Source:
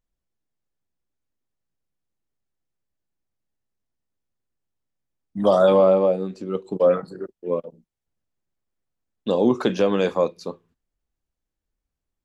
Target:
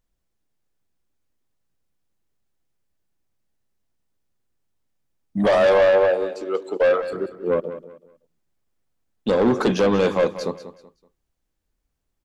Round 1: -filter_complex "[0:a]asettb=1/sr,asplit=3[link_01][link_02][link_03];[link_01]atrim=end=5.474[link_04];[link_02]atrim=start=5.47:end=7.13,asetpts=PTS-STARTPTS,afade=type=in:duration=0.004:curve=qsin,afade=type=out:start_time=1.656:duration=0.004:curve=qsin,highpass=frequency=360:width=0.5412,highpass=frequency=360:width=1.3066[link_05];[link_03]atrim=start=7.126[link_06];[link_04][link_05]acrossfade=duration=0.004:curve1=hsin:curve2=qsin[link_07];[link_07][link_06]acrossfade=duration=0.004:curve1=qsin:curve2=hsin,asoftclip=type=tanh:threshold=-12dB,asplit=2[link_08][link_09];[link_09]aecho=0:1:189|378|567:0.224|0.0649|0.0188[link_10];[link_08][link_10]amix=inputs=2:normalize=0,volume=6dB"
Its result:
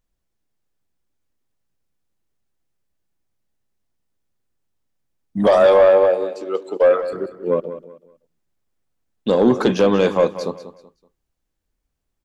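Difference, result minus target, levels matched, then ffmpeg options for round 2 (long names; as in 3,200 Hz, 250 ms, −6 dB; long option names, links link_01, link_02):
soft clipping: distortion −8 dB
-filter_complex "[0:a]asettb=1/sr,asplit=3[link_01][link_02][link_03];[link_01]atrim=end=5.474[link_04];[link_02]atrim=start=5.47:end=7.13,asetpts=PTS-STARTPTS,afade=type=in:duration=0.004:curve=qsin,afade=type=out:start_time=1.656:duration=0.004:curve=qsin,highpass=frequency=360:width=0.5412,highpass=frequency=360:width=1.3066[link_05];[link_03]atrim=start=7.126[link_06];[link_04][link_05]acrossfade=duration=0.004:curve1=hsin:curve2=qsin[link_07];[link_07][link_06]acrossfade=duration=0.004:curve1=qsin:curve2=hsin,asoftclip=type=tanh:threshold=-19dB,asplit=2[link_08][link_09];[link_09]aecho=0:1:189|378|567:0.224|0.0649|0.0188[link_10];[link_08][link_10]amix=inputs=2:normalize=0,volume=6dB"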